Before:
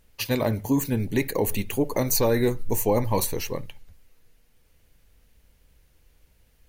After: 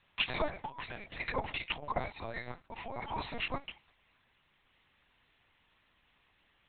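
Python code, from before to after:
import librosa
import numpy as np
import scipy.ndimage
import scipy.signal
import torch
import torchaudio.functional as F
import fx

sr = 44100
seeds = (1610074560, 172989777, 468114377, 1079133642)

y = fx.over_compress(x, sr, threshold_db=-25.0, ratio=-0.5)
y = scipy.signal.sosfilt(scipy.signal.butter(4, 650.0, 'highpass', fs=sr, output='sos'), y)
y = fx.lpc_vocoder(y, sr, seeds[0], excitation='pitch_kept', order=8)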